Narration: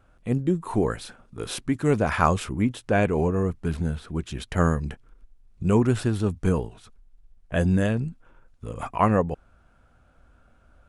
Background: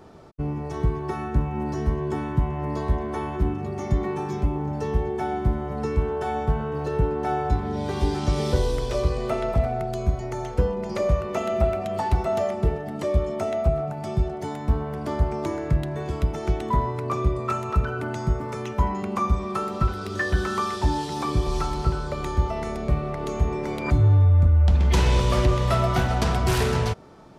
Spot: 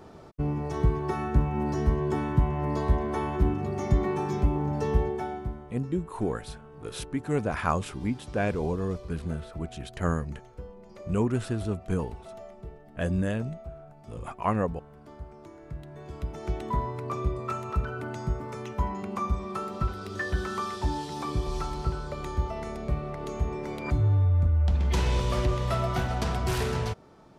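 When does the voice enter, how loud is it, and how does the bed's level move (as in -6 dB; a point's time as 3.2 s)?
5.45 s, -6.0 dB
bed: 5.02 s -0.5 dB
5.84 s -20 dB
15.52 s -20 dB
16.58 s -6 dB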